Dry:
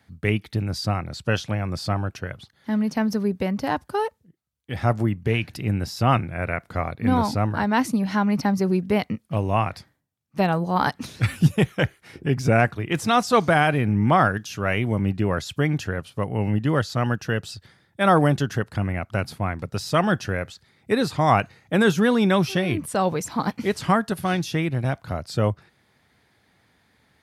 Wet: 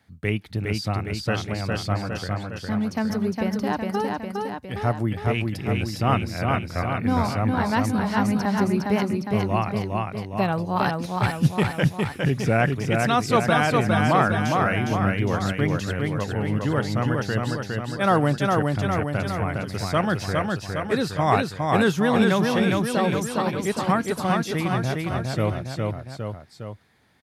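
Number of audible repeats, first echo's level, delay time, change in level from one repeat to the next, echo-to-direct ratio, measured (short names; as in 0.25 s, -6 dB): 3, -3.0 dB, 0.409 s, -4.5 dB, -1.5 dB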